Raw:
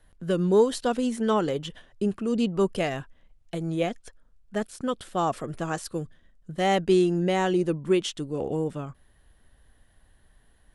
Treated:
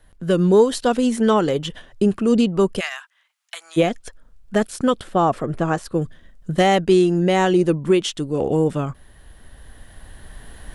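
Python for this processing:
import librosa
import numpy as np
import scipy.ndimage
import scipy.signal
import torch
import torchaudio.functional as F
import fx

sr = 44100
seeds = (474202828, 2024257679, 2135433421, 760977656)

y = fx.recorder_agc(x, sr, target_db=-13.0, rise_db_per_s=6.0, max_gain_db=30)
y = fx.highpass(y, sr, hz=1100.0, slope=24, at=(2.79, 3.76), fade=0.02)
y = fx.high_shelf(y, sr, hz=2700.0, db=-11.5, at=(5.01, 6.02))
y = y * 10.0 ** (5.5 / 20.0)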